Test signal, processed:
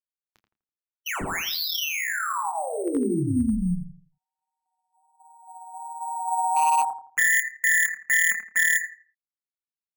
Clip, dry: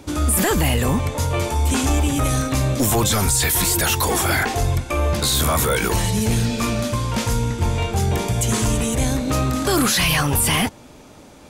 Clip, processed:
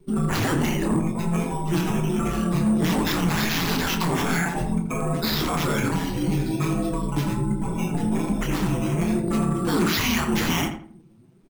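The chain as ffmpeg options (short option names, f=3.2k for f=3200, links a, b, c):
-filter_complex "[0:a]aeval=exprs='val(0)*sin(2*PI*83*n/s)':c=same,flanger=delay=1.7:depth=7.9:regen=11:speed=1.3:shape=triangular,afftdn=nr=19:nf=-37,acrossover=split=250|3000[a][b][c];[a]acompressor=threshold=-33dB:ratio=3[d];[d][b][c]amix=inputs=3:normalize=0,equalizer=f=180:t=o:w=2.3:g=9,asplit=2[e][f];[f]adelay=28,volume=-7.5dB[g];[e][g]amix=inputs=2:normalize=0,acrusher=samples=5:mix=1:aa=0.000001,asplit=2[h][i];[i]adelay=83,lowpass=f=2k:p=1,volume=-7dB,asplit=2[j][k];[k]adelay=83,lowpass=f=2k:p=1,volume=0.32,asplit=2[l][m];[m]adelay=83,lowpass=f=2k:p=1,volume=0.32,asplit=2[n][o];[o]adelay=83,lowpass=f=2k:p=1,volume=0.32[p];[h][j][l][n][p]amix=inputs=5:normalize=0,asoftclip=type=hard:threshold=-15dB,equalizer=f=550:t=o:w=0.63:g=-7"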